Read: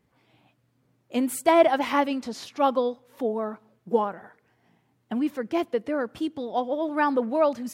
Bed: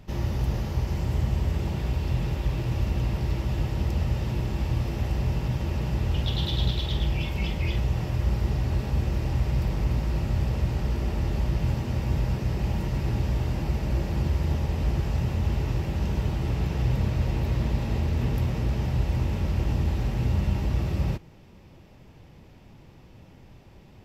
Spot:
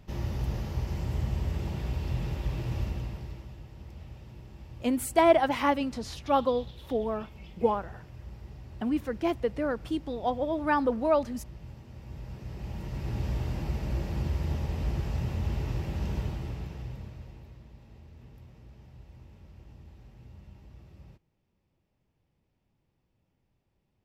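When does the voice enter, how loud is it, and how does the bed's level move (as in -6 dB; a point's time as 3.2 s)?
3.70 s, -2.5 dB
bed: 2.81 s -5 dB
3.61 s -19.5 dB
11.9 s -19.5 dB
13.26 s -5 dB
16.18 s -5 dB
17.64 s -25.5 dB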